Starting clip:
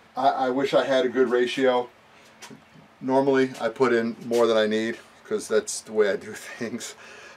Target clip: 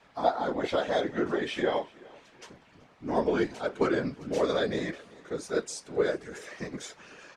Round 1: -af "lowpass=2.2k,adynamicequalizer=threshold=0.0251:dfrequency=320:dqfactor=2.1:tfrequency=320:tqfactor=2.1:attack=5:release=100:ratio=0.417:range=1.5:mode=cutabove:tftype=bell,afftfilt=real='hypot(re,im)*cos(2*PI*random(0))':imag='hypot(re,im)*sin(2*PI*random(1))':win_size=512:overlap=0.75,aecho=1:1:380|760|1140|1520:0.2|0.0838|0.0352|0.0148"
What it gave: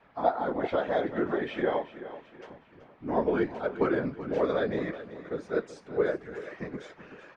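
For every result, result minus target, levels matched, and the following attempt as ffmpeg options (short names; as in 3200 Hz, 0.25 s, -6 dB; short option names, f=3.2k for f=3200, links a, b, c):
8000 Hz band -18.5 dB; echo-to-direct +9.5 dB
-af "lowpass=8.2k,adynamicequalizer=threshold=0.0251:dfrequency=320:dqfactor=2.1:tfrequency=320:tqfactor=2.1:attack=5:release=100:ratio=0.417:range=1.5:mode=cutabove:tftype=bell,afftfilt=real='hypot(re,im)*cos(2*PI*random(0))':imag='hypot(re,im)*sin(2*PI*random(1))':win_size=512:overlap=0.75,aecho=1:1:380|760|1140|1520:0.2|0.0838|0.0352|0.0148"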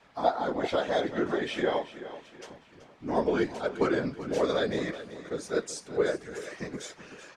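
echo-to-direct +9.5 dB
-af "lowpass=8.2k,adynamicequalizer=threshold=0.0251:dfrequency=320:dqfactor=2.1:tfrequency=320:tqfactor=2.1:attack=5:release=100:ratio=0.417:range=1.5:mode=cutabove:tftype=bell,afftfilt=real='hypot(re,im)*cos(2*PI*random(0))':imag='hypot(re,im)*sin(2*PI*random(1))':win_size=512:overlap=0.75,aecho=1:1:380|760|1140:0.0668|0.0281|0.0118"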